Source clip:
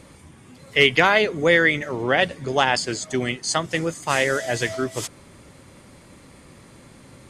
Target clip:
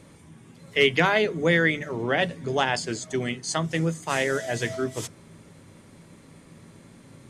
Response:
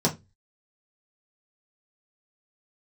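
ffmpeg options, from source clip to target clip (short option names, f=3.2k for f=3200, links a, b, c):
-filter_complex "[0:a]asplit=2[a][b];[1:a]atrim=start_sample=2205,lowshelf=f=170:g=11[c];[b][c]afir=irnorm=-1:irlink=0,volume=-25.5dB[d];[a][d]amix=inputs=2:normalize=0,volume=-5.5dB"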